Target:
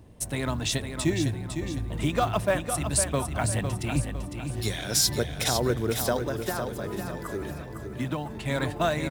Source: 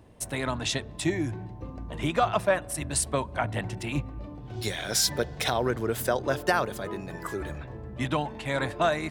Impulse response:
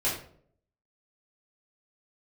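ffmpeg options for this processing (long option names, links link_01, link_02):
-filter_complex "[0:a]asettb=1/sr,asplit=3[link_01][link_02][link_03];[link_01]atrim=end=6.204[link_04];[link_02]atrim=start=6.2:end=8.3,asetpts=PTS-STARTPTS,afade=type=in:duration=0.004:curve=qsin,afade=type=out:start_time=2.096:duration=0.004:curve=qsin,acrossover=split=120|1900[link_05][link_06][link_07];[link_05]acompressor=threshold=-49dB:ratio=4[link_08];[link_06]acompressor=threshold=-28dB:ratio=4[link_09];[link_07]acompressor=threshold=-46dB:ratio=4[link_10];[link_08][link_09][link_10]amix=inputs=3:normalize=0[link_11];[link_03]atrim=start=8.296[link_12];[link_04][link_11]acrossfade=duration=0.004:curve1=hsin:curve2=qsin[link_13];[link_13][link_12]acrossfade=duration=0.004:curve1=qsin:curve2=hsin,highshelf=frequency=3200:gain=7,acrusher=bits=6:mode=log:mix=0:aa=0.000001,lowshelf=frequency=370:gain=9,aecho=1:1:505|1010|1515|2020|2525:0.422|0.173|0.0709|0.0291|0.0119,volume=-4dB"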